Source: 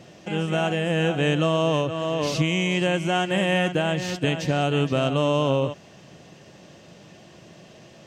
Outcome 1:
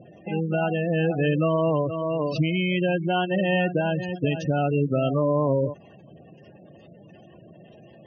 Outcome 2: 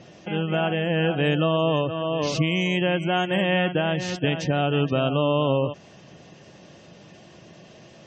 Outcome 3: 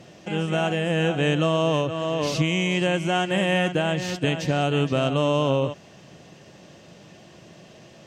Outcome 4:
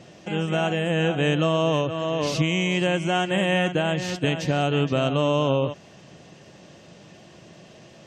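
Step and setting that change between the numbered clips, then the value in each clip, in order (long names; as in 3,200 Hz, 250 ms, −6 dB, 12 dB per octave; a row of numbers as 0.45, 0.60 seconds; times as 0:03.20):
gate on every frequency bin, under each frame's peak: −15, −30, −60, −45 decibels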